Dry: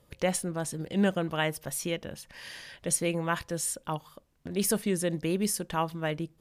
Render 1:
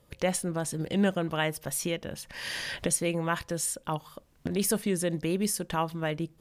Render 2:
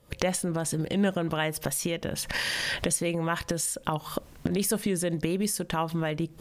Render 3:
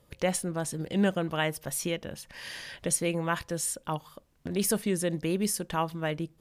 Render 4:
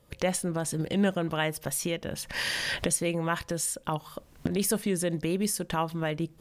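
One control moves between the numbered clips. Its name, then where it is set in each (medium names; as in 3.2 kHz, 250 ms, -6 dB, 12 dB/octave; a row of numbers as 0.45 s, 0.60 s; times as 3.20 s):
recorder AGC, rising by: 15 dB/s, 89 dB/s, 5.3 dB/s, 36 dB/s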